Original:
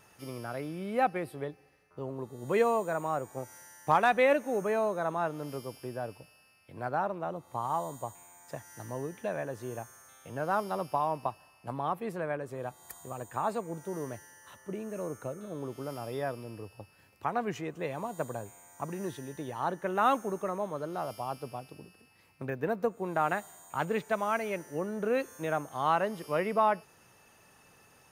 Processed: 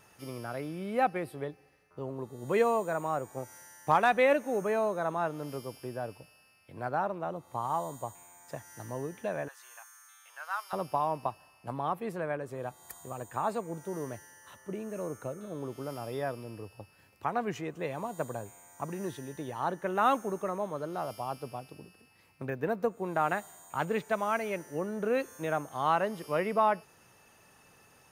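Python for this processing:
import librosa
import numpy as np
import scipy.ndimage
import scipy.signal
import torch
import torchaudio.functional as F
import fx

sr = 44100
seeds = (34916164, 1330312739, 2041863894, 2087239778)

y = fx.highpass(x, sr, hz=1100.0, slope=24, at=(9.48, 10.73))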